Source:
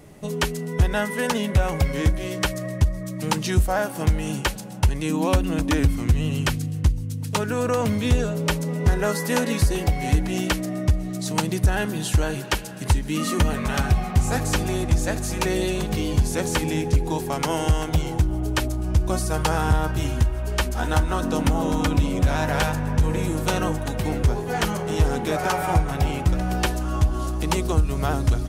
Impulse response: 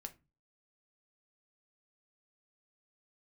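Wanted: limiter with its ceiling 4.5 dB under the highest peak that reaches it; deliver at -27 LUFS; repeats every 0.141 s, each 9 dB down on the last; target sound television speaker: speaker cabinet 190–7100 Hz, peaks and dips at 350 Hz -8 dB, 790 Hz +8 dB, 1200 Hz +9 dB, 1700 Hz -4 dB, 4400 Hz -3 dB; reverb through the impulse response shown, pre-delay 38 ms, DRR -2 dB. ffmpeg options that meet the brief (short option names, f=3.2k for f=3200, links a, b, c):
-filter_complex "[0:a]alimiter=limit=-14dB:level=0:latency=1,aecho=1:1:141|282|423|564:0.355|0.124|0.0435|0.0152,asplit=2[a][b];[1:a]atrim=start_sample=2205,adelay=38[c];[b][c]afir=irnorm=-1:irlink=0,volume=6.5dB[d];[a][d]amix=inputs=2:normalize=0,highpass=f=190:w=0.5412,highpass=f=190:w=1.3066,equalizer=f=350:t=q:w=4:g=-8,equalizer=f=790:t=q:w=4:g=8,equalizer=f=1.2k:t=q:w=4:g=9,equalizer=f=1.7k:t=q:w=4:g=-4,equalizer=f=4.4k:t=q:w=4:g=-3,lowpass=f=7.1k:w=0.5412,lowpass=f=7.1k:w=1.3066,volume=-5dB"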